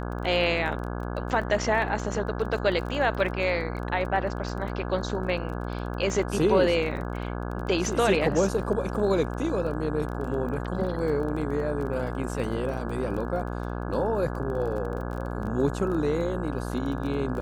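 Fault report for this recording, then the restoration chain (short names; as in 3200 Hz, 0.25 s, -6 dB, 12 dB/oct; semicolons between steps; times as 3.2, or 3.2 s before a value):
buzz 60 Hz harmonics 28 -32 dBFS
crackle 20/s -34 dBFS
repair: de-click; de-hum 60 Hz, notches 28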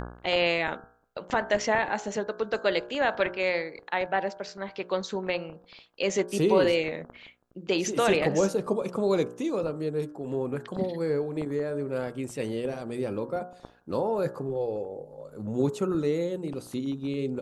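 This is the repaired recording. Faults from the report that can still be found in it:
none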